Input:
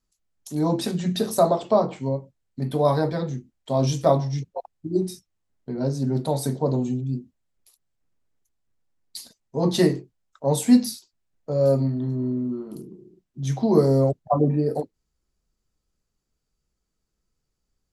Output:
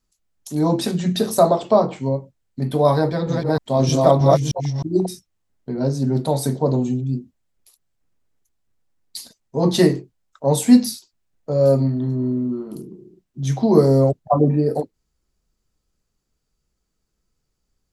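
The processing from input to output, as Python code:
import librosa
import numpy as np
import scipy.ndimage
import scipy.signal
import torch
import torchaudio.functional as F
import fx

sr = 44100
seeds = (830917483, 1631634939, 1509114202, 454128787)

y = fx.reverse_delay(x, sr, ms=311, wet_db=-0.5, at=(2.96, 5.06))
y = F.gain(torch.from_numpy(y), 4.0).numpy()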